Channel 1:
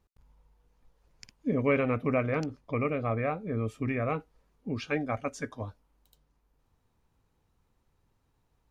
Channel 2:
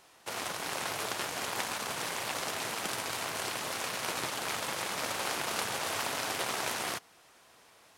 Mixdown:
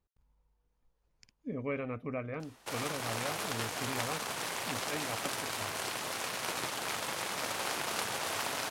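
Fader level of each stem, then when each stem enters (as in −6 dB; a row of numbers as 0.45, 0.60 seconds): −10.0, −1.5 decibels; 0.00, 2.40 seconds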